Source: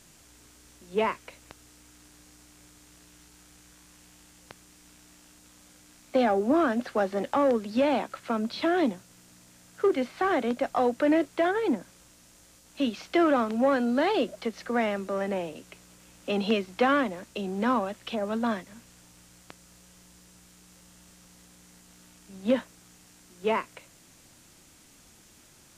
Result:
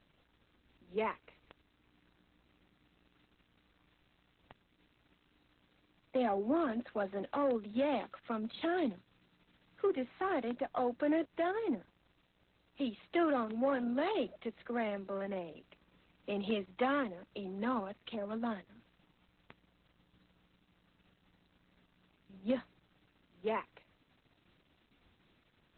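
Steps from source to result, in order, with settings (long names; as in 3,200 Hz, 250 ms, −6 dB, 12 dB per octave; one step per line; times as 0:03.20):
0:07.63–0:09.85: high-shelf EQ 4,800 Hz +7 dB
level −8.5 dB
Opus 8 kbit/s 48,000 Hz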